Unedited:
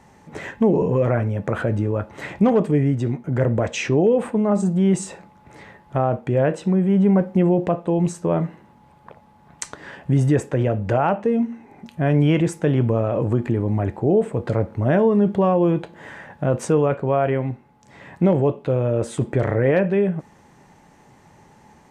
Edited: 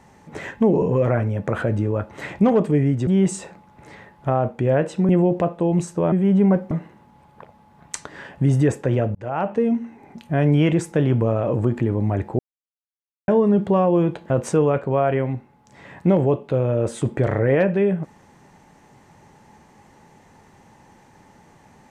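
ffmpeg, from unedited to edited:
-filter_complex "[0:a]asplit=9[a][b][c][d][e][f][g][h][i];[a]atrim=end=3.072[j];[b]atrim=start=4.748:end=6.772[k];[c]atrim=start=7.358:end=8.392[l];[d]atrim=start=6.768:end=7.362[m];[e]atrim=start=8.388:end=10.83,asetpts=PTS-STARTPTS,afade=t=out:st=2.438:d=0.004:c=hsin[n];[f]atrim=start=10.83:end=14.07,asetpts=PTS-STARTPTS,afade=t=in:d=0.39,afade=t=out:st=3.236:d=0.004:c=hsin[o];[g]atrim=start=14.07:end=14.96,asetpts=PTS-STARTPTS,volume=0[p];[h]atrim=start=14.96:end=15.982,asetpts=PTS-STARTPTS,afade=t=in:d=0.004:c=hsin[q];[i]atrim=start=16.458[r];[j][k]acrossfade=d=0.004:c1=hsin:c2=hsin[s];[s][l]acrossfade=d=0.004:c1=hsin:c2=hsin[t];[t][m]acrossfade=d=0.004:c1=hsin:c2=hsin[u];[n][o][p][q]concat=n=4:v=0:a=1[v];[u][v]acrossfade=d=0.004:c1=hsin:c2=hsin[w];[w][r]acrossfade=d=0.004:c1=hsin:c2=hsin"

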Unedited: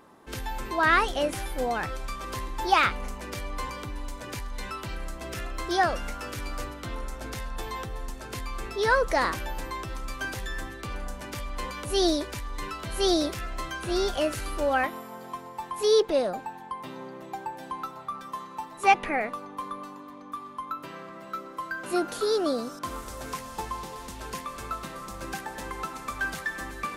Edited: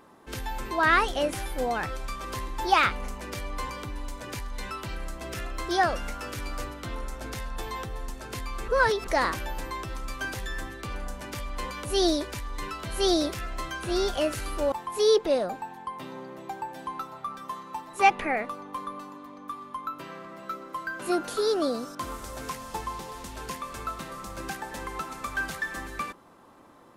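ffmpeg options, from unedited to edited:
-filter_complex "[0:a]asplit=4[a][b][c][d];[a]atrim=end=8.682[e];[b]atrim=start=8.678:end=9.072,asetpts=PTS-STARTPTS,areverse[f];[c]atrim=start=9.068:end=14.722[g];[d]atrim=start=15.558[h];[e][f]acrossfade=d=0.004:c1=hsin:c2=hsin[i];[i][g]acrossfade=d=0.004:c1=hsin:c2=hsin[j];[j][h]acrossfade=d=0.004:c1=hsin:c2=hsin"

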